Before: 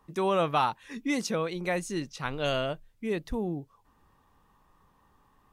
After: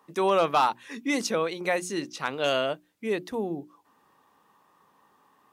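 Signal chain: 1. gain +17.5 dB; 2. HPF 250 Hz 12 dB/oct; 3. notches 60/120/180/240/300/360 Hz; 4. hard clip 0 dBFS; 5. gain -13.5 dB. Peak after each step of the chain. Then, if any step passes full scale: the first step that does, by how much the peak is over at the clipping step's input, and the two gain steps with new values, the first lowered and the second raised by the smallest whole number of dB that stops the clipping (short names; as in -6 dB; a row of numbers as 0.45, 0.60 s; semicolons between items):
+3.0, +4.5, +4.5, 0.0, -13.5 dBFS; step 1, 4.5 dB; step 1 +12.5 dB, step 5 -8.5 dB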